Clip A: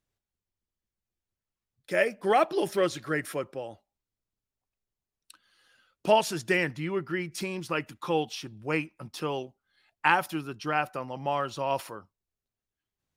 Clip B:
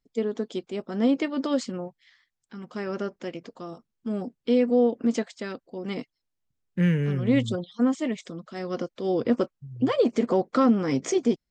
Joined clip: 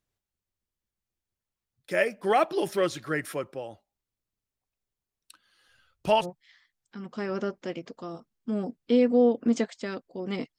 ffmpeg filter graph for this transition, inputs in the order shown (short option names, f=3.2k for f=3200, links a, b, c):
-filter_complex "[0:a]asplit=3[a][b][c];[a]afade=t=out:st=5.68:d=0.02[d];[b]asubboost=boost=8:cutoff=94,afade=t=in:st=5.68:d=0.02,afade=t=out:st=6.26:d=0.02[e];[c]afade=t=in:st=6.26:d=0.02[f];[d][e][f]amix=inputs=3:normalize=0,apad=whole_dur=10.58,atrim=end=10.58,atrim=end=6.26,asetpts=PTS-STARTPTS[g];[1:a]atrim=start=1.78:end=6.16,asetpts=PTS-STARTPTS[h];[g][h]acrossfade=d=0.06:c1=tri:c2=tri"